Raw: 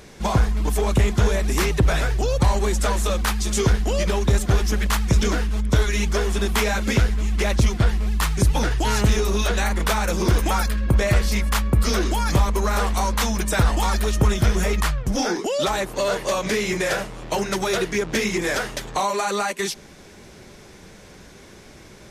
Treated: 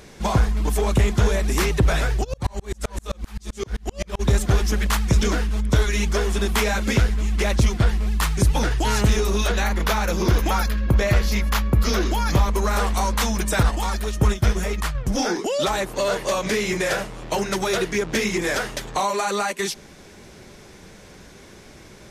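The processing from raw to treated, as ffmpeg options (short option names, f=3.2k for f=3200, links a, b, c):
-filter_complex "[0:a]asplit=3[a][b][c];[a]afade=t=out:st=2.23:d=0.02[d];[b]aeval=exprs='val(0)*pow(10,-37*if(lt(mod(-7.7*n/s,1),2*abs(-7.7)/1000),1-mod(-7.7*n/s,1)/(2*abs(-7.7)/1000),(mod(-7.7*n/s,1)-2*abs(-7.7)/1000)/(1-2*abs(-7.7)/1000))/20)':c=same,afade=t=in:st=2.23:d=0.02,afade=t=out:st=4.19:d=0.02[e];[c]afade=t=in:st=4.19:d=0.02[f];[d][e][f]amix=inputs=3:normalize=0,asettb=1/sr,asplit=3[g][h][i];[g]atrim=end=9.524[j];[h]atrim=start=9.52:end=12.5,asetpts=PTS-STARTPTS,afade=t=in:d=0.004:c=qsin,afade=t=out:st=2.976:d=0.004:c=qsin,equalizer=f=8.5k:w=5.1:g=-15[k];[i]atrim=start=12.496[l];[j][k]acrossfade=d=0.004:c1=hsin:c2=qsin[m];[m][l]acrossfade=d=0.004:c1=qsin:c2=hsin,asettb=1/sr,asplit=3[n][o][p];[n]atrim=end=13.634[q];[o]atrim=start=13.63:end=14.95,asetpts=PTS-STARTPTS,afade=t=in:d=0.004:c=qsin,afade=t=out:st=1.316:d=0.004:c=qsin,agate=range=-33dB:threshold=-17dB:ratio=3:release=100:detection=peak[r];[p]atrim=start=14.946[s];[q][r]acrossfade=d=0.004:c1=hsin:c2=qsin[t];[t][s]acrossfade=d=0.004:c1=qsin:c2=hsin"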